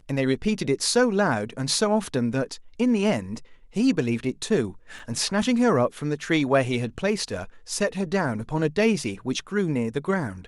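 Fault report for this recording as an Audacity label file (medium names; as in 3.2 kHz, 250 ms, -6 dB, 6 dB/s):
4.990000	4.990000	dropout 3.8 ms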